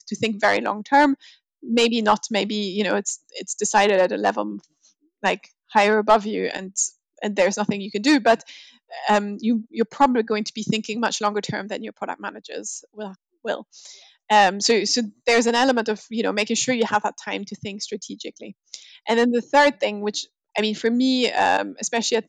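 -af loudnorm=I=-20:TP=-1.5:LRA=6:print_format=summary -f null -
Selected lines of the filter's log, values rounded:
Input Integrated:    -21.4 LUFS
Input True Peak:      -5.2 dBTP
Input LRA:             3.8 LU
Input Threshold:     -32.0 LUFS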